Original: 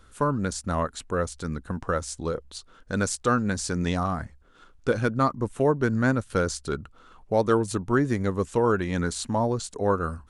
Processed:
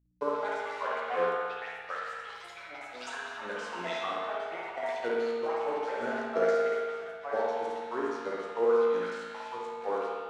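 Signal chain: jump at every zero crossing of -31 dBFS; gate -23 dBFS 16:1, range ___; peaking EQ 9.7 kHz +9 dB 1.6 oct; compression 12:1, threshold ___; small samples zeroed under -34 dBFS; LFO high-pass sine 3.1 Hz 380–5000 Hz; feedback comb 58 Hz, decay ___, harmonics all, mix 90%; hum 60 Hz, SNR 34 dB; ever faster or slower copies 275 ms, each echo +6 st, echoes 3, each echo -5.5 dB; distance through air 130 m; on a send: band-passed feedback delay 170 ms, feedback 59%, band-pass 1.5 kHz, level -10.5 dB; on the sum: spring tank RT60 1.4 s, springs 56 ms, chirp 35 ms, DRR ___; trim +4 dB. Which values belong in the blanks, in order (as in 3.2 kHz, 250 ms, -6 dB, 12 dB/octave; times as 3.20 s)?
-14 dB, -22 dBFS, 1.1 s, -3 dB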